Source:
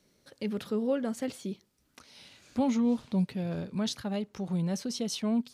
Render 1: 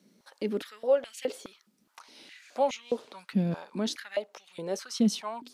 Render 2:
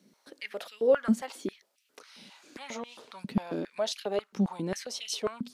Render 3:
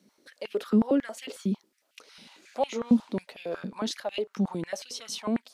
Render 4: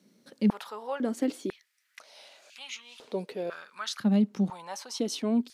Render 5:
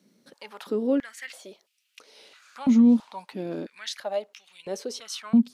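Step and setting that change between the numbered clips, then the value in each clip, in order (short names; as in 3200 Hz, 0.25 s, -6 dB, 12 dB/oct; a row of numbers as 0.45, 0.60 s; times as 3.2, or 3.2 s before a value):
stepped high-pass, rate: 4.8, 7.4, 11, 2, 3 Hz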